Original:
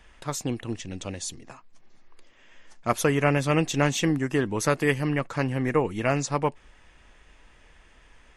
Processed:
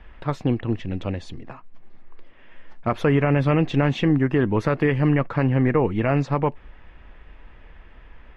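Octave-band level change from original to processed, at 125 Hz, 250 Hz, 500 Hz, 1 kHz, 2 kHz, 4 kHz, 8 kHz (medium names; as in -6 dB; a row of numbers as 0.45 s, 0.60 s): +7.0 dB, +5.5 dB, +3.0 dB, +1.5 dB, 0.0 dB, -3.0 dB, under -15 dB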